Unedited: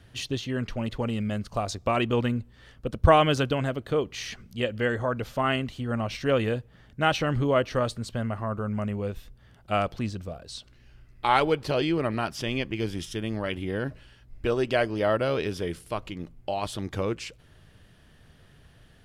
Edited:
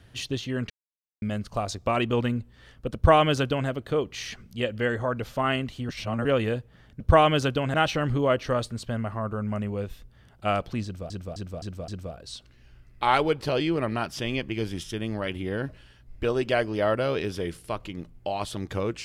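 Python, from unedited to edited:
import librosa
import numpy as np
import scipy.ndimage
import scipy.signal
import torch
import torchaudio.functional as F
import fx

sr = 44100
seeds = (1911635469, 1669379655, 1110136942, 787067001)

y = fx.edit(x, sr, fx.silence(start_s=0.7, length_s=0.52),
    fx.duplicate(start_s=2.95, length_s=0.74, to_s=7.0),
    fx.reverse_span(start_s=5.89, length_s=0.36),
    fx.repeat(start_s=10.1, length_s=0.26, count=5), tone=tone)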